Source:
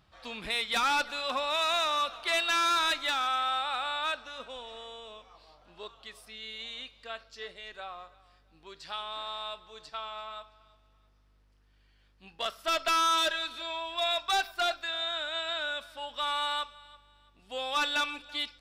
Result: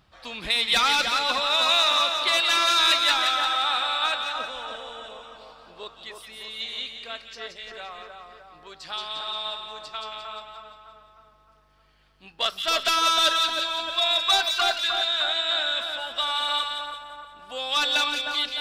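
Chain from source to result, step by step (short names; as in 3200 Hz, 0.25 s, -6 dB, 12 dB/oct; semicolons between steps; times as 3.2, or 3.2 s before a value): split-band echo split 1800 Hz, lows 0.306 s, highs 0.175 s, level -4.5 dB; dynamic EQ 4100 Hz, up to +6 dB, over -44 dBFS, Q 1.2; harmonic-percussive split percussive +5 dB; gain +1.5 dB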